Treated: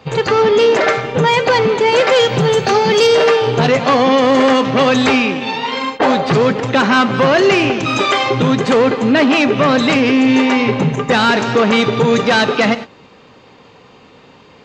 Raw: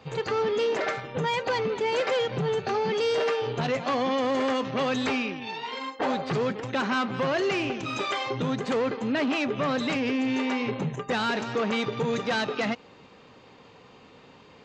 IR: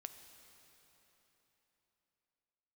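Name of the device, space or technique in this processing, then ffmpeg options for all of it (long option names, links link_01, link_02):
keyed gated reverb: -filter_complex "[0:a]asettb=1/sr,asplit=3[link_01][link_02][link_03];[link_01]atrim=end=2.164[link_04];[link_02]atrim=start=2.16:end=3.07,asetpts=PTS-STARTPTS,afade=type=in:duration=0.004:curve=qsin,afade=type=out:start_time=0.906:duration=0.004:curve=qsin,aemphasis=mode=production:type=50fm[link_05];[link_03]atrim=start=3.066[link_06];[link_04][link_05]acrossfade=duration=0.004:curve1=hsin:curve2=qsin[link_07];[link_07][link_06]acrossfade=duration=0.004:curve1=qsin:curve2=hsin,asplit=3[link_08][link_09][link_10];[1:a]atrim=start_sample=2205[link_11];[link_09][link_11]afir=irnorm=-1:irlink=0[link_12];[link_10]apad=whole_len=645839[link_13];[link_12][link_13]sidechaingate=range=-33dB:threshold=-39dB:ratio=16:detection=peak,volume=6dB[link_14];[link_08][link_14]amix=inputs=2:normalize=0,volume=8dB"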